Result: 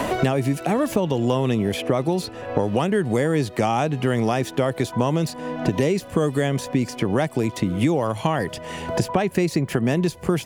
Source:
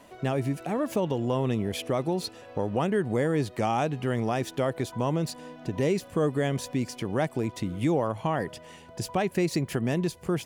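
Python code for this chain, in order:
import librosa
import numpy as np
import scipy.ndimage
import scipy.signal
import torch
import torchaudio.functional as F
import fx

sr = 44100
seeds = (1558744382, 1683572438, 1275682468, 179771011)

y = fx.band_squash(x, sr, depth_pct=100)
y = y * librosa.db_to_amplitude(5.0)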